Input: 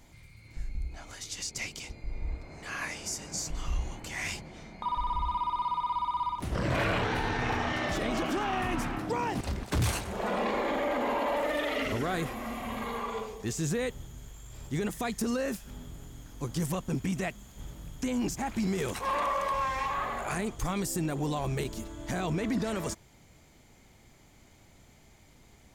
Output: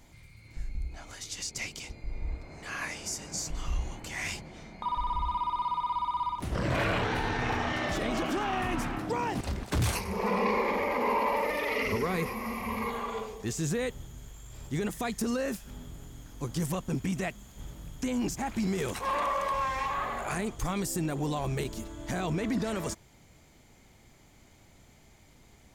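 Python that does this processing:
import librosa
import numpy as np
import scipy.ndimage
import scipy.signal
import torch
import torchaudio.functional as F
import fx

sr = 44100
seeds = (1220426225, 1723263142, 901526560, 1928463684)

y = fx.ripple_eq(x, sr, per_octave=0.85, db=12, at=(9.95, 12.9))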